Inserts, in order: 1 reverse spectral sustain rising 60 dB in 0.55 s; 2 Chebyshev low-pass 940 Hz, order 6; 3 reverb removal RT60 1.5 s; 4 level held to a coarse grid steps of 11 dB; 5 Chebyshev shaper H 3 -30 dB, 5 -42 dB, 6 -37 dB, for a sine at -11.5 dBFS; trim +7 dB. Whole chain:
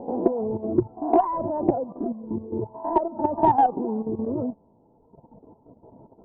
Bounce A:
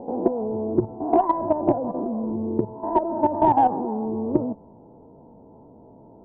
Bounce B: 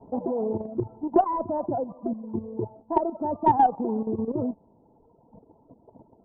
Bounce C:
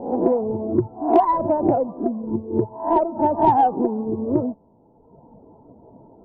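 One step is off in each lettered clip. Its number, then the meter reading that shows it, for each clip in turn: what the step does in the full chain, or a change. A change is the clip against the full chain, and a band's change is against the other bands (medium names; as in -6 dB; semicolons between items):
3, momentary loudness spread change -2 LU; 1, loudness change -2.0 LU; 4, crest factor change -3.5 dB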